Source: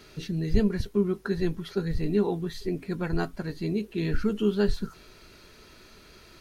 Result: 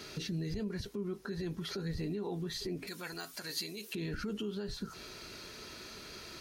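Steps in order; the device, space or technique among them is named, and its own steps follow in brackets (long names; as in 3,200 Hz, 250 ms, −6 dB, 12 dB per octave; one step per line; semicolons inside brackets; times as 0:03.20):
broadcast voice chain (high-pass filter 100 Hz 6 dB per octave; de-essing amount 95%; downward compressor 4 to 1, threshold −35 dBFS, peak gain reduction 13.5 dB; parametric band 5,400 Hz +4.5 dB 1.1 octaves; brickwall limiter −33.5 dBFS, peak gain reduction 9 dB)
0:02.87–0:03.95: spectral tilt +4.5 dB per octave
level +3.5 dB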